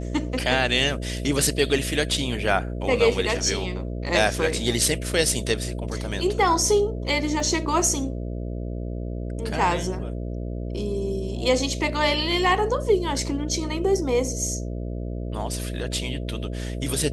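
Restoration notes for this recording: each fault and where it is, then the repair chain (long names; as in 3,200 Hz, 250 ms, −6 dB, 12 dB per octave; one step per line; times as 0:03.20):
mains buzz 60 Hz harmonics 11 −30 dBFS
0:07.40: drop-out 3.1 ms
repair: hum removal 60 Hz, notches 11
repair the gap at 0:07.40, 3.1 ms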